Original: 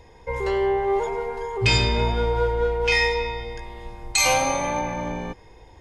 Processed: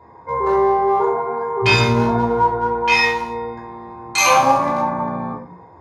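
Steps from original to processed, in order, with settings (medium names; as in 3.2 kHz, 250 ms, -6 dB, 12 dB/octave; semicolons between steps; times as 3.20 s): local Wiener filter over 15 samples; high-pass 100 Hz 24 dB/octave; peaking EQ 1.1 kHz +13.5 dB 0.65 oct; band-stop 7.9 kHz, Q 9.6; simulated room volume 350 m³, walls furnished, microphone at 3.1 m; trim -1 dB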